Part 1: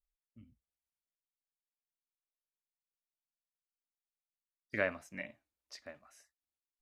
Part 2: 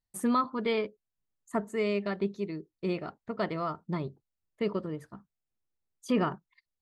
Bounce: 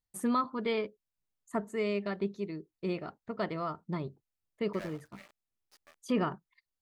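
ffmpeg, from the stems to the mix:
-filter_complex "[0:a]adynamicequalizer=threshold=0.00316:dfrequency=710:dqfactor=1.9:tfrequency=710:tqfactor=1.9:attack=5:release=100:ratio=0.375:range=3.5:mode=boostabove:tftype=bell,acrusher=bits=5:dc=4:mix=0:aa=0.000001,asplit=2[a][b];[b]highpass=f=720:p=1,volume=19dB,asoftclip=type=tanh:threshold=-15.5dB[c];[a][c]amix=inputs=2:normalize=0,lowpass=f=6.4k:p=1,volume=-6dB,volume=-20dB[d];[1:a]volume=-2.5dB[e];[d][e]amix=inputs=2:normalize=0"

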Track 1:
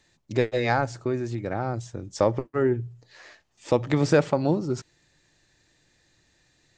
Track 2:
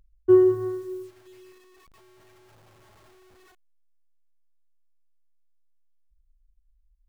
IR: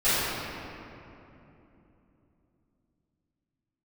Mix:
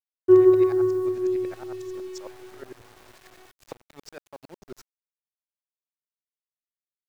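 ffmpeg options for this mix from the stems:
-filter_complex "[0:a]highpass=f=740:p=1,acompressor=threshold=-33dB:ratio=10,aeval=exprs='val(0)*pow(10,-32*if(lt(mod(-11*n/s,1),2*abs(-11)/1000),1-mod(-11*n/s,1)/(2*abs(-11)/1000),(mod(-11*n/s,1)-2*abs(-11)/1000)/(1-2*abs(-11)/1000))/20)':c=same,volume=1.5dB[a];[1:a]bass=f=250:g=-4,treble=f=4k:g=0,volume=0dB,asplit=3[b][c][d];[b]atrim=end=3.89,asetpts=PTS-STARTPTS,afade=t=out:st=3.886:d=0.004:c=hsin[e];[c]atrim=start=3.89:end=4.61,asetpts=PTS-STARTPTS,volume=0[f];[d]atrim=start=4.61,asetpts=PTS-STARTPTS,afade=t=in:d=0.004:c=hsin[g];[e][f][g]concat=n=3:v=0:a=1,asplit=2[h][i];[i]volume=-16dB[j];[2:a]atrim=start_sample=2205[k];[j][k]afir=irnorm=-1:irlink=0[l];[a][h][l]amix=inputs=3:normalize=0,aeval=exprs='val(0)*gte(abs(val(0)),0.00501)':c=same"

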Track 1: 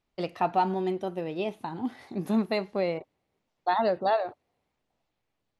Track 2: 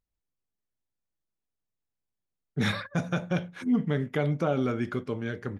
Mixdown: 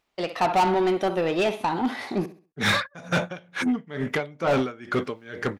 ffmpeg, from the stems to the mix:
-filter_complex "[0:a]volume=-1.5dB,asplit=3[a][b][c];[a]atrim=end=2.26,asetpts=PTS-STARTPTS,afade=t=out:st=2.256:d=0.004:c=hsin[d];[b]atrim=start=2.26:end=5.02,asetpts=PTS-STARTPTS,volume=0[e];[c]atrim=start=5.02,asetpts=PTS-STARTPTS,afade=t=in:d=0.004:c=hsin[f];[d][e][f]concat=n=3:v=0:a=1,asplit=2[g][h];[h]volume=-16dB[i];[1:a]aeval=exprs='val(0)*pow(10,-28*(0.5-0.5*cos(2*PI*2.2*n/s))/20)':c=same,volume=1dB[j];[i]aecho=0:1:66|132|198|264:1|0.3|0.09|0.027[k];[g][j][k]amix=inputs=3:normalize=0,dynaudnorm=f=120:g=7:m=8dB,asoftclip=type=hard:threshold=-15.5dB,asplit=2[l][m];[m]highpass=f=720:p=1,volume=16dB,asoftclip=type=tanh:threshold=-15.5dB[n];[l][n]amix=inputs=2:normalize=0,lowpass=f=6.3k:p=1,volume=-6dB"

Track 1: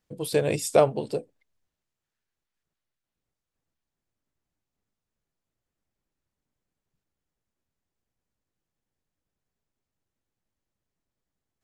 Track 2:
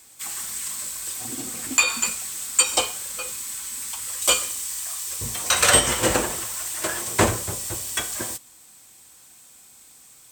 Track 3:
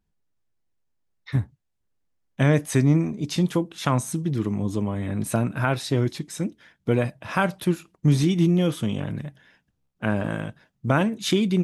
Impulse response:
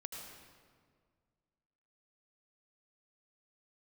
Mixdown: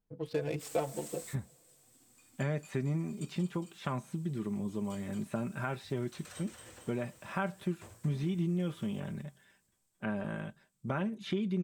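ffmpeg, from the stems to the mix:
-filter_complex "[0:a]adynamicsmooth=sensitivity=5.5:basefreq=1.2k,asplit=2[a][b];[b]adelay=4.3,afreqshift=0.3[c];[a][c]amix=inputs=2:normalize=1,volume=-5dB,asplit=3[d][e][f];[e]volume=-19.5dB[g];[1:a]equalizer=f=91:w=1.5:g=7,adelay=400,volume=-17dB,asplit=2[h][i];[i]volume=-18dB[j];[2:a]acrossover=split=3300[k][l];[l]acompressor=threshold=-50dB:ratio=4:attack=1:release=60[m];[k][m]amix=inputs=2:normalize=0,aecho=1:1:5.1:0.52,volume=-10.5dB[n];[f]apad=whole_len=472590[o];[h][o]sidechaingate=range=-33dB:threshold=-54dB:ratio=16:detection=peak[p];[3:a]atrim=start_sample=2205[q];[g][q]afir=irnorm=-1:irlink=0[r];[j]aecho=0:1:225|450|675|900|1125|1350|1575|1800|2025:1|0.58|0.336|0.195|0.113|0.0656|0.0381|0.0221|0.0128[s];[d][p][n][r][s]amix=inputs=5:normalize=0,acompressor=threshold=-32dB:ratio=2"

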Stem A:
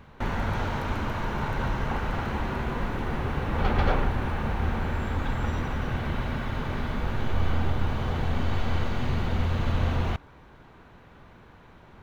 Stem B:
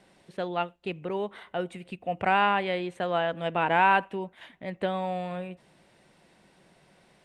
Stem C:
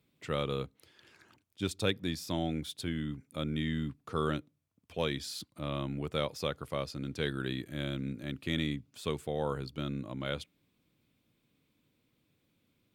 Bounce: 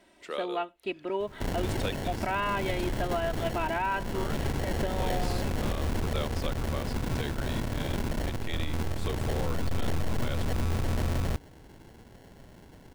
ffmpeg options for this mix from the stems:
-filter_complex "[0:a]acrusher=samples=36:mix=1:aa=0.000001,aeval=exprs='0.282*(cos(1*acos(clip(val(0)/0.282,-1,1)))-cos(1*PI/2))+0.0282*(cos(8*acos(clip(val(0)/0.282,-1,1)))-cos(8*PI/2))':c=same,volume=23dB,asoftclip=hard,volume=-23dB,adelay=1200,volume=0dB[a];[1:a]aecho=1:1:3.1:0.81,volume=-2.5dB,asplit=2[b][c];[2:a]highpass=f=350:w=0.5412,highpass=f=350:w=1.3066,volume=-1dB[d];[c]apad=whole_len=571019[e];[d][e]sidechaincompress=threshold=-31dB:ratio=8:attack=29:release=407[f];[a][b][f]amix=inputs=3:normalize=0,alimiter=limit=-20dB:level=0:latency=1:release=296"

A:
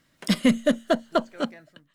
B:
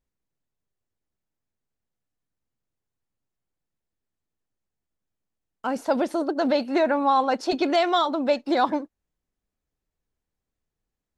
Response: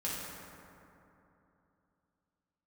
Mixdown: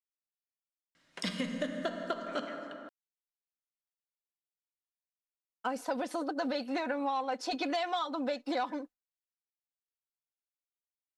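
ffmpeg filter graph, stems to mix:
-filter_complex "[0:a]lowpass=7k,bandreject=f=50:t=h:w=6,bandreject=f=100:t=h:w=6,bandreject=f=150:t=h:w=6,bandreject=f=200:t=h:w=6,acompressor=threshold=-25dB:ratio=2.5,adelay=950,volume=-4dB,asplit=2[a][b];[b]volume=-5.5dB[c];[1:a]agate=range=-33dB:threshold=-34dB:ratio=3:detection=peak,aecho=1:1:4:0.68,asoftclip=type=tanh:threshold=-9dB,volume=-3dB[d];[2:a]atrim=start_sample=2205[e];[c][e]afir=irnorm=-1:irlink=0[f];[a][d][f]amix=inputs=3:normalize=0,lowshelf=f=350:g=-10.5,acompressor=threshold=-30dB:ratio=6"

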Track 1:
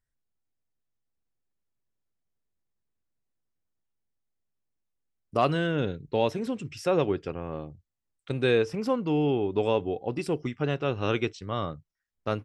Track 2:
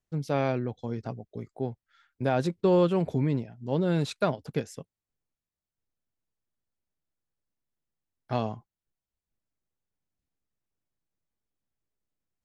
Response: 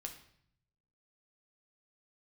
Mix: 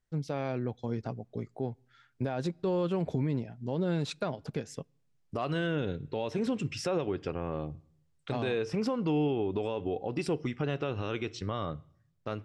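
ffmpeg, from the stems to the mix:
-filter_complex "[0:a]acompressor=threshold=-26dB:ratio=2,volume=-0.5dB,asplit=2[a][b];[b]volume=-13.5dB[c];[1:a]volume=-2.5dB,asplit=2[d][e];[e]volume=-23.5dB[f];[2:a]atrim=start_sample=2205[g];[c][f]amix=inputs=2:normalize=0[h];[h][g]afir=irnorm=-1:irlink=0[i];[a][d][i]amix=inputs=3:normalize=0,dynaudnorm=f=240:g=7:m=3.5dB,lowpass=8.2k,alimiter=limit=-22dB:level=0:latency=1:release=137"

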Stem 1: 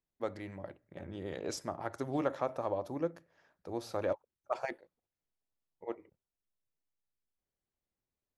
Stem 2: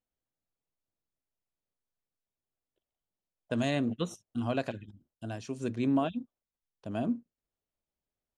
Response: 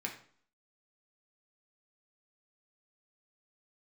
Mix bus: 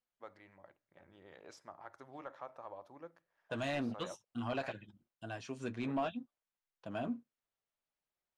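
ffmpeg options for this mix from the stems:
-filter_complex "[0:a]equalizer=f=1k:w=1.5:g=2.5,volume=-19dB[a];[1:a]flanger=delay=5.5:depth=3.4:regen=-43:speed=0.6:shape=sinusoidal,volume=-3dB[b];[a][b]amix=inputs=2:normalize=0,equalizer=f=400:w=0.49:g=-8.5,asplit=2[c][d];[d]highpass=f=720:p=1,volume=21dB,asoftclip=type=tanh:threshold=-22.5dB[e];[c][e]amix=inputs=2:normalize=0,lowpass=f=1.2k:p=1,volume=-6dB"

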